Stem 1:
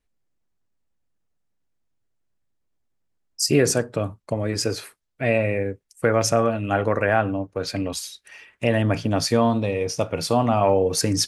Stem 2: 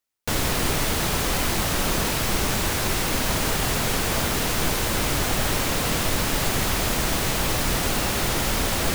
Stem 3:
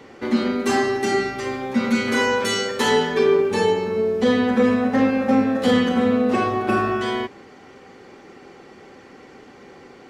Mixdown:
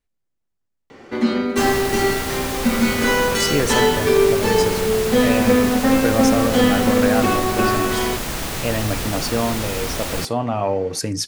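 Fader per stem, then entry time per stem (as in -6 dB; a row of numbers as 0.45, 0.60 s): -2.5, -2.5, +1.5 dB; 0.00, 1.30, 0.90 s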